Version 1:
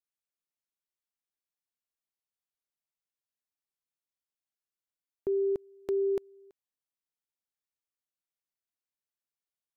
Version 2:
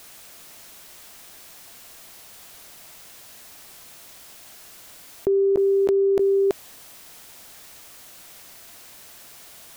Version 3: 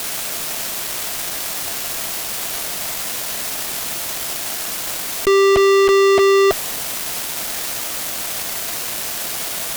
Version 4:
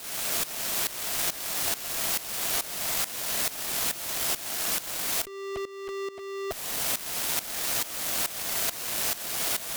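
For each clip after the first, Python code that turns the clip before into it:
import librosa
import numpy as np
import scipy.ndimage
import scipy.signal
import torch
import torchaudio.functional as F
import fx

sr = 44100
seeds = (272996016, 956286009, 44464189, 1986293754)

y1 = fx.peak_eq(x, sr, hz=670.0, db=5.0, octaves=0.22)
y1 = fx.env_flatten(y1, sr, amount_pct=100)
y1 = y1 * 10.0 ** (8.5 / 20.0)
y2 = fx.peak_eq(y1, sr, hz=79.0, db=-7.0, octaves=0.59)
y2 = fx.fuzz(y2, sr, gain_db=48.0, gate_db=-43.0)
y2 = y2 * 10.0 ** (1.5 / 20.0)
y3 = fx.over_compress(y2, sr, threshold_db=-21.0, ratio=-1.0)
y3 = fx.tremolo_shape(y3, sr, shape='saw_up', hz=2.3, depth_pct=85)
y3 = y3 * 10.0 ** (-4.0 / 20.0)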